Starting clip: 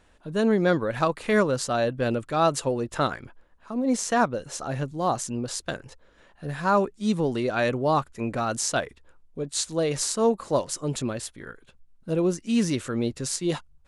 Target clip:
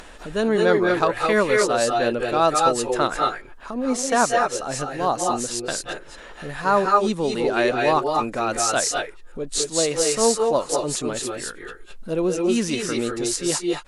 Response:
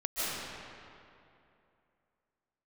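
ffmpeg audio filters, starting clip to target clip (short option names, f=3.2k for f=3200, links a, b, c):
-filter_complex "[0:a]acompressor=mode=upward:threshold=-31dB:ratio=2.5,equalizer=f=100:w=0.69:g=-11[a];[1:a]atrim=start_sample=2205,atrim=end_sample=6615,asetrate=29106,aresample=44100[b];[a][b]afir=irnorm=-1:irlink=0,volume=3.5dB"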